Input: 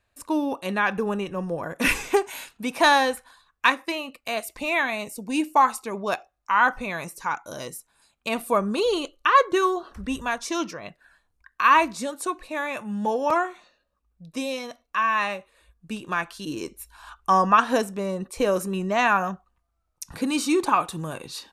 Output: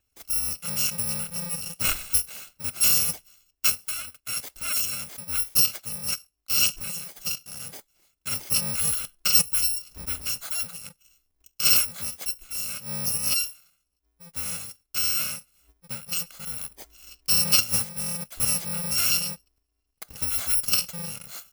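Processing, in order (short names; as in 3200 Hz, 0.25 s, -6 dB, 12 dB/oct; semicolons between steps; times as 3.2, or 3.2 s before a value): FFT order left unsorted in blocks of 128 samples; gain -2.5 dB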